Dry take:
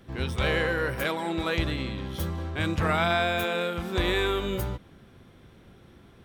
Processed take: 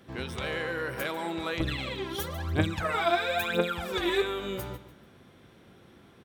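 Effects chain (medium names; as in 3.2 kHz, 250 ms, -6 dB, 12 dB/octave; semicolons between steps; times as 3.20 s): compression, threshold -28 dBFS, peak gain reduction 8 dB; high-pass 170 Hz 6 dB/octave; feedback delay 146 ms, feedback 33%, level -14.5 dB; 1.60–4.22 s: phaser 1 Hz, delay 3.1 ms, feedback 79%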